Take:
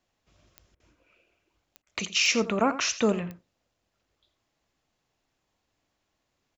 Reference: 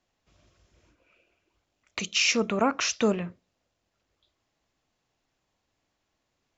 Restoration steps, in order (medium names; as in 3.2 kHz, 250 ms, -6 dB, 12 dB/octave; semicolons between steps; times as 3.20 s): de-click; interpolate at 0.75/1.82 s, 48 ms; inverse comb 85 ms -14 dB